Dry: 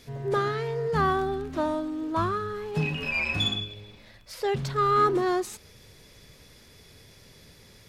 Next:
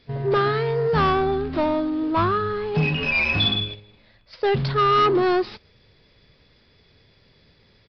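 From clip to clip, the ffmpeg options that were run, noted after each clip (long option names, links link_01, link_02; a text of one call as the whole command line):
ffmpeg -i in.wav -af "agate=range=-12dB:threshold=-40dB:ratio=16:detection=peak,aresample=11025,asoftclip=type=tanh:threshold=-21.5dB,aresample=44100,volume=8dB" out.wav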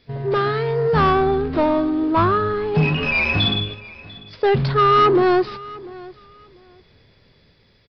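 ffmpeg -i in.wav -filter_complex "[0:a]acrossover=split=2100[link_01][link_02];[link_01]dynaudnorm=framelen=170:gausssize=9:maxgain=4dB[link_03];[link_03][link_02]amix=inputs=2:normalize=0,aecho=1:1:695|1390:0.0944|0.0189" out.wav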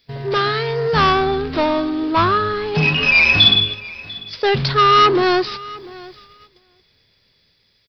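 ffmpeg -i in.wav -af "agate=range=-10dB:threshold=-46dB:ratio=16:detection=peak,crystalizer=i=7:c=0,volume=-1.5dB" out.wav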